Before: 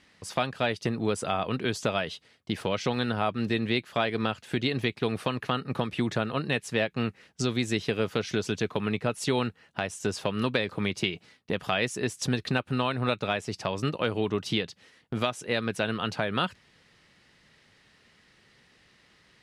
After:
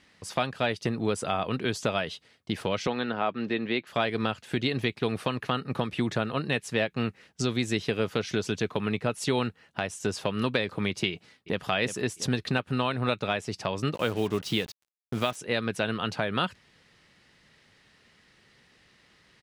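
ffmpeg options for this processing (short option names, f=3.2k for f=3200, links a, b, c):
-filter_complex "[0:a]asettb=1/sr,asplit=3[a][b][c];[a]atrim=end=2.874[d];[b]atrim=start=2.87:end=3.87,asetpts=PTS-STARTPTS,afade=t=in:d=0.004:c=qsin,afade=t=out:st=0.996:d=0.004:c=qsin,highpass=210,lowpass=3.4k[e];[c]atrim=start=3.866[f];[d][e]acrossfade=d=0.004:c1=hsin:c2=qsin[g];[g][f]acrossfade=d=0.004:c1=qsin:c2=hsin,asplit=2[h][i];[i]afade=t=in:st=11.11:d=0.01,afade=t=out:st=11.66:d=0.01,aecho=0:1:350|700|1050|1400|1750|2100:0.281838|0.155011|0.0852561|0.0468908|0.02579|0.0141845[j];[h][j]amix=inputs=2:normalize=0,asettb=1/sr,asplit=3[k][l][m];[k]atrim=end=13.944[n];[l]atrim=start=13.94:end=15.36,asetpts=PTS-STARTPTS,afade=t=in:d=0.004:c=qsin,afade=t=out:st=1.416:d=0.004:c=qsin,acrusher=bits=6:mix=0:aa=0.5[o];[m]atrim=start=15.356[p];[n][o]acrossfade=d=0.004:c1=hsin:c2=qsin[q];[q][p]acrossfade=d=0.004:c1=qsin:c2=hsin"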